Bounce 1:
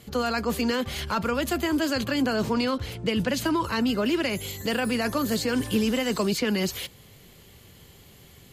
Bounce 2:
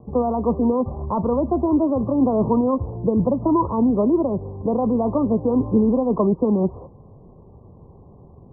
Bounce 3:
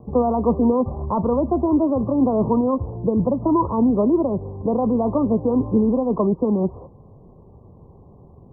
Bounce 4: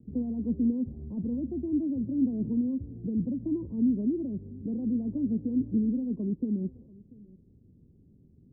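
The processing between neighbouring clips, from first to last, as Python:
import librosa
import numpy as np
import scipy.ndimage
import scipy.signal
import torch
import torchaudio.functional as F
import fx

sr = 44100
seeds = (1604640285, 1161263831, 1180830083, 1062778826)

y1 = scipy.signal.sosfilt(scipy.signal.butter(16, 1100.0, 'lowpass', fs=sr, output='sos'), x)
y1 = F.gain(torch.from_numpy(y1), 7.0).numpy()
y2 = fx.rider(y1, sr, range_db=10, speed_s=2.0)
y3 = fx.ladder_lowpass(y2, sr, hz=320.0, resonance_pct=45)
y3 = y3 + 10.0 ** (-22.5 / 20.0) * np.pad(y3, (int(688 * sr / 1000.0), 0))[:len(y3)]
y3 = F.gain(torch.from_numpy(y3), -4.5).numpy()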